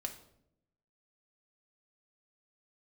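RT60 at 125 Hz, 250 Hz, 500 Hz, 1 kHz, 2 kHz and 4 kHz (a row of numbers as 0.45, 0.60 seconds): 1.1, 1.1, 0.90, 0.60, 0.55, 0.50 seconds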